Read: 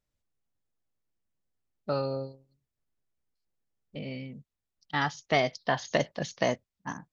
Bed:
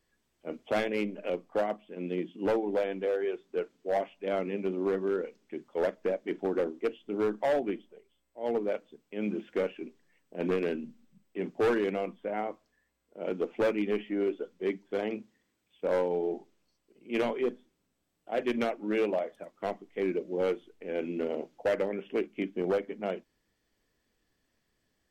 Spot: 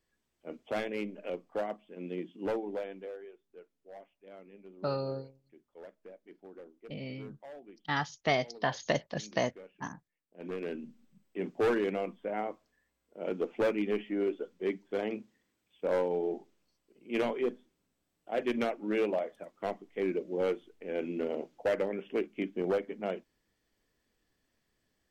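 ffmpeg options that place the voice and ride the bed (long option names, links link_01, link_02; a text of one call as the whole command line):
ffmpeg -i stem1.wav -i stem2.wav -filter_complex "[0:a]adelay=2950,volume=-3dB[link_01];[1:a]volume=14dB,afade=type=out:start_time=2.52:duration=0.81:silence=0.16788,afade=type=in:start_time=10.28:duration=0.77:silence=0.112202[link_02];[link_01][link_02]amix=inputs=2:normalize=0" out.wav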